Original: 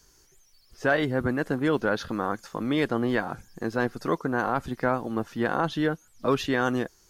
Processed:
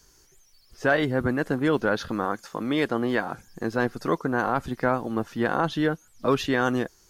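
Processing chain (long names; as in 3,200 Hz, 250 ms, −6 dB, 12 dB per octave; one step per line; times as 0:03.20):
0:02.25–0:03.47: low-shelf EQ 110 Hz −9.5 dB
level +1.5 dB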